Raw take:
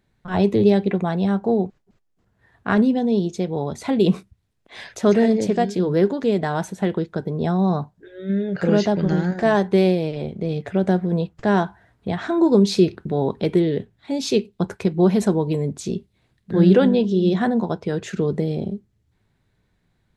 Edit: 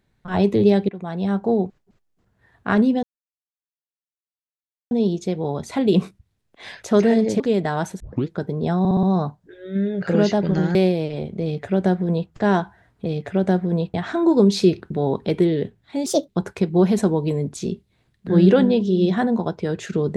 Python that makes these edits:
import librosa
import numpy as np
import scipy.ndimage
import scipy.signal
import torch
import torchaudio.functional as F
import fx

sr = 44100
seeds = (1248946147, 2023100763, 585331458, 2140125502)

y = fx.edit(x, sr, fx.fade_in_from(start_s=0.89, length_s=0.5, floor_db=-18.5),
    fx.insert_silence(at_s=3.03, length_s=1.88),
    fx.cut(start_s=5.52, length_s=0.66),
    fx.tape_start(start_s=6.78, length_s=0.27),
    fx.stutter(start_s=7.57, slice_s=0.06, count=5),
    fx.cut(start_s=9.29, length_s=0.49),
    fx.duplicate(start_s=10.46, length_s=0.88, to_s=12.09),
    fx.speed_span(start_s=14.21, length_s=0.31, speed=1.39), tone=tone)